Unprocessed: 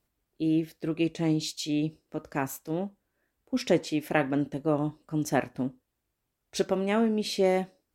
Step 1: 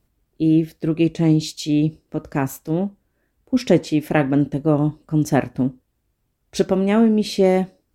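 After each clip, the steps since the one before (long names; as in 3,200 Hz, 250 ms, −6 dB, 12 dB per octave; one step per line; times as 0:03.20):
low-shelf EQ 310 Hz +10 dB
level +4.5 dB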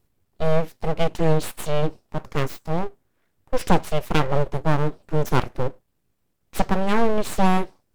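full-wave rectification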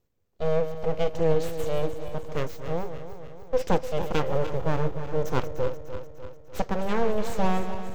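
feedback delay that plays each chunk backwards 149 ms, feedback 74%, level −10 dB
thirty-one-band graphic EQ 500 Hz +9 dB, 6,300 Hz +4 dB, 10,000 Hz −12 dB
level −7.5 dB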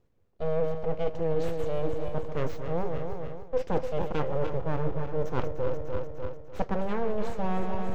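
low-pass filter 1,900 Hz 6 dB per octave
reversed playback
downward compressor, threshold −28 dBFS, peak gain reduction 12.5 dB
reversed playback
level +6 dB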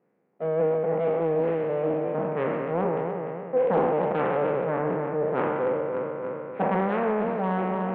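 peak hold with a decay on every bin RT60 2.43 s
elliptic band-pass filter 180–2,200 Hz, stop band 40 dB
highs frequency-modulated by the lows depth 0.31 ms
level +3 dB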